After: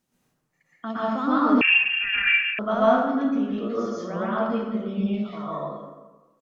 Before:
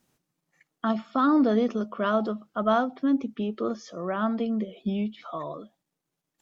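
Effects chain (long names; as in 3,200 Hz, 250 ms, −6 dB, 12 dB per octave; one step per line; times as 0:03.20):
far-end echo of a speakerphone 100 ms, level −18 dB
dense smooth reverb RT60 1.2 s, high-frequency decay 0.5×, pre-delay 105 ms, DRR −9 dB
0:01.61–0:02.59: voice inversion scrambler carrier 3,000 Hz
level −6.5 dB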